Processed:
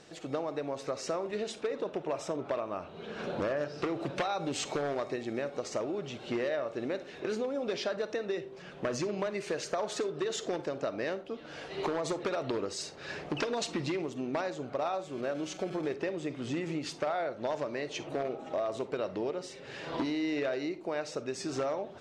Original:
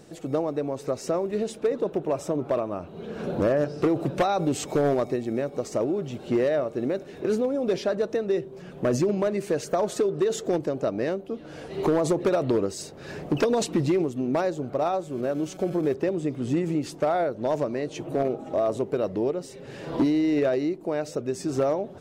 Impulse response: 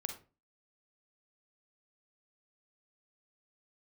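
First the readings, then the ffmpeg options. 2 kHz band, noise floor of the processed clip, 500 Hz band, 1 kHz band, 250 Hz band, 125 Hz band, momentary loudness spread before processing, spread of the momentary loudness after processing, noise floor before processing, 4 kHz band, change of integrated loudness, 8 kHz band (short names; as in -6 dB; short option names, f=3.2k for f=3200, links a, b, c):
-1.5 dB, -48 dBFS, -8.5 dB, -6.0 dB, -10.0 dB, -11.5 dB, 7 LU, 5 LU, -43 dBFS, 0.0 dB, -8.5 dB, -4.0 dB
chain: -filter_complex "[0:a]lowpass=5.3k,tiltshelf=f=670:g=-7,acompressor=threshold=-26dB:ratio=4,asplit=2[a][b];[1:a]atrim=start_sample=2205[c];[b][c]afir=irnorm=-1:irlink=0,volume=-1.5dB[d];[a][d]amix=inputs=2:normalize=0,volume=-8dB"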